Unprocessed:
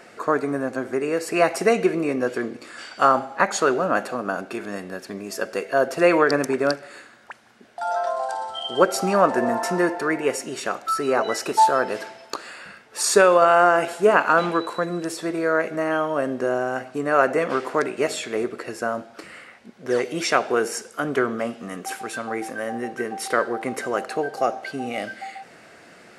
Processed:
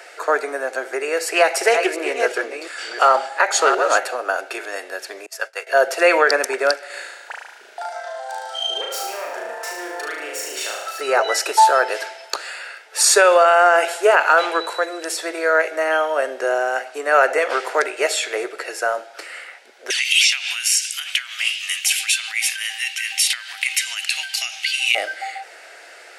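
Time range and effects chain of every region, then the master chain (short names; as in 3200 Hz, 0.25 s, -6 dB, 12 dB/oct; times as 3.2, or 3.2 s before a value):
1.25–4.04 reverse delay 0.357 s, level -8 dB + Doppler distortion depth 0.13 ms
5.26–5.67 HPF 970 Hz + tilt shelf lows +4.5 dB, about 1300 Hz + expander -34 dBFS
6.86–11.01 self-modulated delay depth 0.17 ms + compressor 12:1, threshold -31 dBFS + flutter echo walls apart 6.3 m, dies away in 0.9 s
19.9–24.95 inverse Chebyshev high-pass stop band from 440 Hz, stop band 50 dB + compressor, threshold -35 dBFS + resonant high shelf 1900 Hz +12.5 dB, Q 3
whole clip: Bessel high-pass 690 Hz, order 8; bell 1100 Hz -10.5 dB 0.24 oct; maximiser +11 dB; gain -2.5 dB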